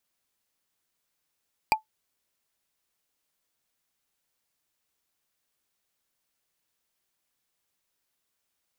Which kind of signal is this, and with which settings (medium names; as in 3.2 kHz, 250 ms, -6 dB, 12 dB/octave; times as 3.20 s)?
wood hit, lowest mode 871 Hz, decay 0.12 s, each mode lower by 3 dB, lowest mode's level -13.5 dB